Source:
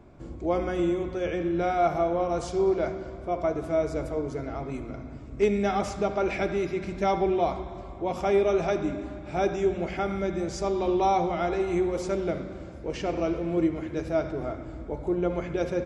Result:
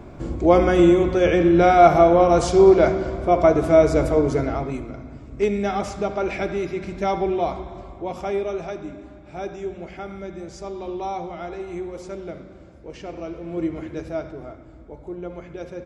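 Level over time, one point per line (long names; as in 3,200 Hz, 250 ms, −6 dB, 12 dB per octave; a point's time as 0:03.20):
0:04.39 +11.5 dB
0:04.94 +2 dB
0:07.81 +2 dB
0:08.77 −5.5 dB
0:13.35 −5.5 dB
0:13.79 +1.5 dB
0:14.61 −6.5 dB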